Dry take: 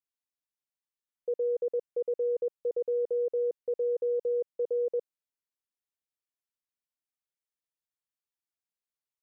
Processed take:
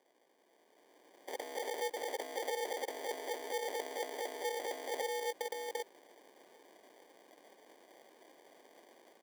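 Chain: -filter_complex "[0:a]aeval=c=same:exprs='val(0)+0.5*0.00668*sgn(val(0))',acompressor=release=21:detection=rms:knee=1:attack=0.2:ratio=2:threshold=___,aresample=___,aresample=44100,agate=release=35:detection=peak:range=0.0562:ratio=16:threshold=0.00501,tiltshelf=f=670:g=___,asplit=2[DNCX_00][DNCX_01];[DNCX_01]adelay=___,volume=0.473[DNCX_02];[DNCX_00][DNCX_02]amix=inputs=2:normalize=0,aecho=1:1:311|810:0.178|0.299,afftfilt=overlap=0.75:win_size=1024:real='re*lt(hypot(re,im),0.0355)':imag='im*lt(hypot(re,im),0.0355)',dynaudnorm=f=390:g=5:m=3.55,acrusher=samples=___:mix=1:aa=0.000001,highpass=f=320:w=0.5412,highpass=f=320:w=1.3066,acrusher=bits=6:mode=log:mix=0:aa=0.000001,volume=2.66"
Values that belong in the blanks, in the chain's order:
0.00355, 16000, -5, 19, 33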